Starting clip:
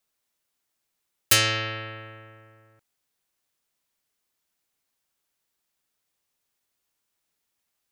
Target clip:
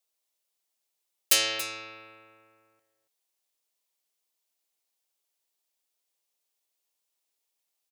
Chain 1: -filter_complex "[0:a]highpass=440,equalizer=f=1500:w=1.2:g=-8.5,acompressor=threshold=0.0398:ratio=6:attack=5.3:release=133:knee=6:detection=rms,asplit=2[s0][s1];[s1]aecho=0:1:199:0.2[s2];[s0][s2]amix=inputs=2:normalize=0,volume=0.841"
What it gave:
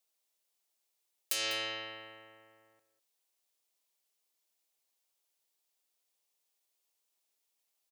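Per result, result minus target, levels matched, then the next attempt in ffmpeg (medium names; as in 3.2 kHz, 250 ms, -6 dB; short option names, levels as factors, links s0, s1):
compression: peak gain reduction +14.5 dB; echo 82 ms early
-filter_complex "[0:a]highpass=440,equalizer=f=1500:w=1.2:g=-8.5,asplit=2[s0][s1];[s1]aecho=0:1:199:0.2[s2];[s0][s2]amix=inputs=2:normalize=0,volume=0.841"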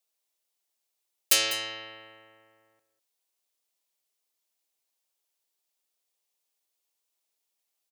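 echo 82 ms early
-filter_complex "[0:a]highpass=440,equalizer=f=1500:w=1.2:g=-8.5,asplit=2[s0][s1];[s1]aecho=0:1:281:0.2[s2];[s0][s2]amix=inputs=2:normalize=0,volume=0.841"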